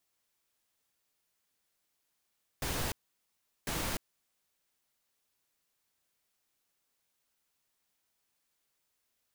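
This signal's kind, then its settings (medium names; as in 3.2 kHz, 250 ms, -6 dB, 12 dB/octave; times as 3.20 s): noise bursts pink, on 0.30 s, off 0.75 s, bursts 2, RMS -34.5 dBFS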